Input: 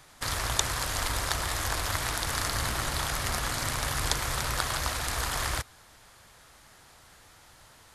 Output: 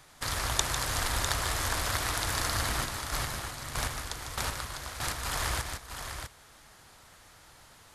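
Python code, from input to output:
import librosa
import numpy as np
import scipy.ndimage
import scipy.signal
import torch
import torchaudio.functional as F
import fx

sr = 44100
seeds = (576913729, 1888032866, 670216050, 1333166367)

y = fx.chopper(x, sr, hz=1.6, depth_pct=65, duty_pct=20, at=(2.84, 5.24), fade=0.02)
y = fx.echo_multitap(y, sr, ms=(150, 651), db=(-8.0, -7.5))
y = y * librosa.db_to_amplitude(-1.5)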